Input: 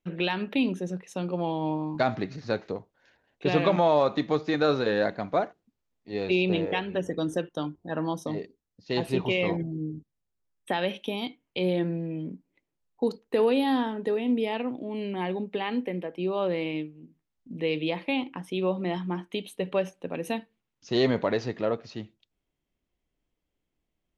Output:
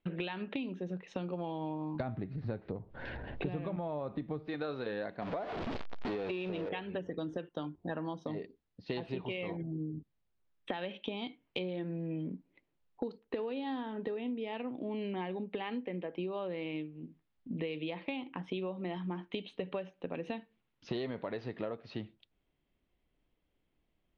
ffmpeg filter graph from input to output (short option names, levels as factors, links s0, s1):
-filter_complex "[0:a]asettb=1/sr,asplit=3[s0][s1][s2];[s0]atrim=end=2.004[s3];[s1]atrim=start=2:end=4.48,asetpts=PTS-STARTPTS,afade=t=in:d=0.004:c=qsin,afade=t=out:st=2.476:d=0.004:c=qsin,aemphasis=mode=reproduction:type=riaa,acompressor=mode=upward:threshold=0.0398:ratio=2.5:attack=3.2:release=140:knee=2.83:detection=peak[s4];[s2]atrim=start=4.476[s5];[s3][s4]acrossfade=d=0.004:c1=hsin:c2=qsin[s6];[s6][s5]acrossfade=d=0.004:c1=qsin:c2=hsin,asettb=1/sr,asplit=3[s7][s8][s9];[s7]atrim=end=5.224[s10];[s8]atrim=start=5.22:end=6.69,asetpts=PTS-STARTPTS,afade=t=in:d=0.004:c=qsin,afade=t=out:st=1.466:d=0.004:c=qsin,aeval=exprs='val(0)+0.5*0.0299*sgn(val(0))':c=same,equalizer=f=700:w=0.64:g=5,acompressor=threshold=0.0447:ratio=2:attack=3.2:release=140:knee=1:detection=peak[s11];[s9]atrim=start=6.686[s12];[s10][s11]acrossfade=d=0.004:c1=hsin:c2=qsin[s13];[s13][s12]acrossfade=d=0.004:c1=qsin:c2=hsin,lowpass=f=4000:w=0.5412,lowpass=f=4000:w=1.3066,acompressor=threshold=0.0141:ratio=16,volume=1.41"